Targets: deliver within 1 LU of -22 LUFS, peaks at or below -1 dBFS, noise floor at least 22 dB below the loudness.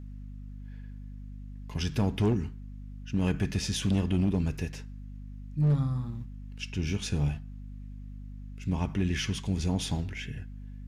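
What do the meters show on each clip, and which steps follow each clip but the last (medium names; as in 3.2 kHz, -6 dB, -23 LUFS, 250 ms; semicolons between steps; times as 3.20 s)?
clipped samples 1.1%; clipping level -20.0 dBFS; hum 50 Hz; highest harmonic 250 Hz; hum level -40 dBFS; loudness -30.5 LUFS; peak level -20.0 dBFS; loudness target -22.0 LUFS
-> clip repair -20 dBFS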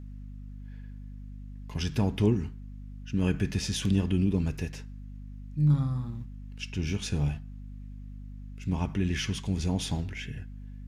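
clipped samples 0.0%; hum 50 Hz; highest harmonic 250 Hz; hum level -39 dBFS
-> de-hum 50 Hz, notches 5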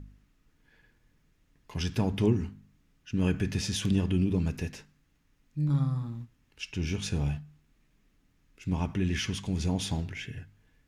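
hum not found; loudness -31.0 LUFS; peak level -13.5 dBFS; loudness target -22.0 LUFS
-> trim +9 dB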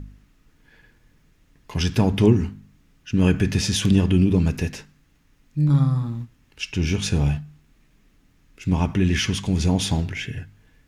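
loudness -22.0 LUFS; peak level -4.5 dBFS; noise floor -60 dBFS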